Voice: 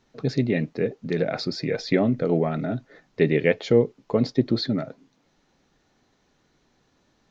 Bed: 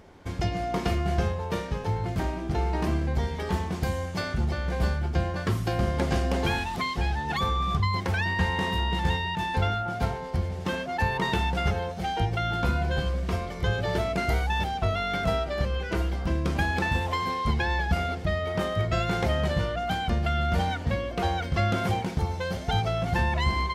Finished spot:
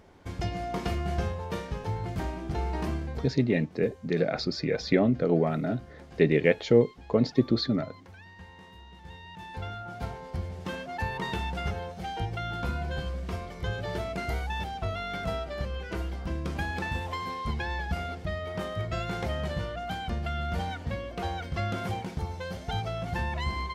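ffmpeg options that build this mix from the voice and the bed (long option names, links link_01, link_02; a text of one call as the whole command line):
ffmpeg -i stem1.wav -i stem2.wav -filter_complex "[0:a]adelay=3000,volume=-2dB[link_01];[1:a]volume=13dB,afade=type=out:start_time=2.85:duration=0.6:silence=0.112202,afade=type=in:start_time=9.02:duration=1.38:silence=0.141254[link_02];[link_01][link_02]amix=inputs=2:normalize=0" out.wav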